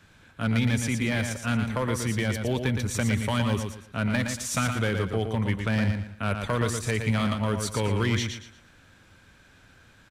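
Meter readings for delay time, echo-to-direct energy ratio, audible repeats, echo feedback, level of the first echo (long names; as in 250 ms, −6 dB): 116 ms, −5.5 dB, 3, 29%, −6.0 dB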